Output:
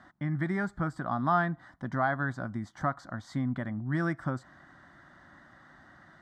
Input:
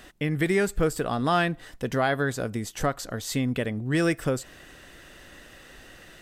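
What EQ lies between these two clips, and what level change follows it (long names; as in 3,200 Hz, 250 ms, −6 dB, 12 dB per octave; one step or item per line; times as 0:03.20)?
band-pass filter 120–2,300 Hz
phaser with its sweep stopped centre 1,100 Hz, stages 4
0.0 dB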